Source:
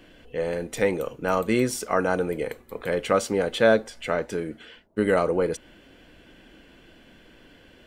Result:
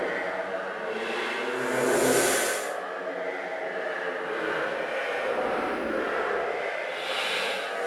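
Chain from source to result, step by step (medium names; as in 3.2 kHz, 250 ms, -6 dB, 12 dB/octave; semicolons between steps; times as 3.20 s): companding laws mixed up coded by mu; on a send: flutter echo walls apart 5.3 m, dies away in 0.21 s; on the sum: fuzz box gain 41 dB, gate -45 dBFS; formant shift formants +4 st; LFO band-pass sine 7.3 Hz 420–1600 Hz; compressor with a negative ratio -33 dBFS, ratio -1; treble shelf 4 kHz -5.5 dB; Paulstretch 4×, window 0.25 s, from 1.23 s; fifteen-band graphic EQ 100 Hz -11 dB, 1 kHz -6 dB, 10 kHz +8 dB; trim +7.5 dB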